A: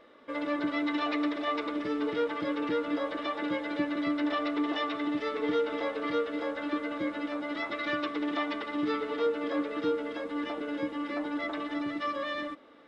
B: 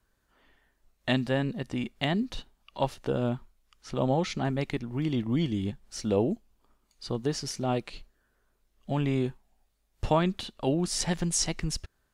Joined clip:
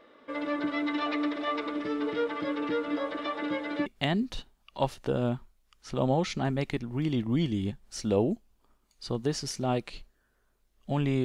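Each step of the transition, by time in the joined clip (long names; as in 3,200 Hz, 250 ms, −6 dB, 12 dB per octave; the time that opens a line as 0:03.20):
A
0:03.86: continue with B from 0:01.86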